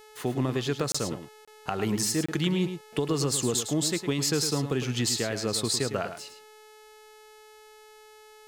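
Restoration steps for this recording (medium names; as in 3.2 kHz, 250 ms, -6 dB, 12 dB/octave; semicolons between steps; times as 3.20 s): clip repair -13 dBFS; de-hum 429.4 Hz, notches 31; interpolate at 0.92/1.45/2.26 s, 25 ms; inverse comb 107 ms -9.5 dB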